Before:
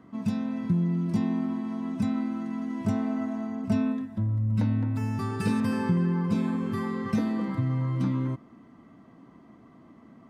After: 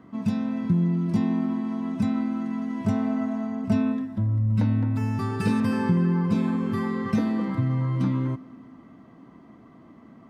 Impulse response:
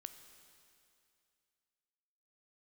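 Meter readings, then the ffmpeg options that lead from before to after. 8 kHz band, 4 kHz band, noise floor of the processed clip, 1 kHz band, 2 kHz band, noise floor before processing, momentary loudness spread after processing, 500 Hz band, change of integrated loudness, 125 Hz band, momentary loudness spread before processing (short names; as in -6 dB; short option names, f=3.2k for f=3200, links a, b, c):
n/a, +2.0 dB, -50 dBFS, +3.0 dB, +2.5 dB, -54 dBFS, 5 LU, +3.0 dB, +3.0 dB, +3.0 dB, 6 LU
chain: -filter_complex "[0:a]asplit=2[a][b];[1:a]atrim=start_sample=2205,lowpass=6.2k[c];[b][c]afir=irnorm=-1:irlink=0,volume=-2.5dB[d];[a][d]amix=inputs=2:normalize=0"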